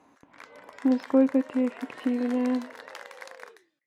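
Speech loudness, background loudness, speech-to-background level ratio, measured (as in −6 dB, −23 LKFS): −26.5 LKFS, −45.0 LKFS, 18.5 dB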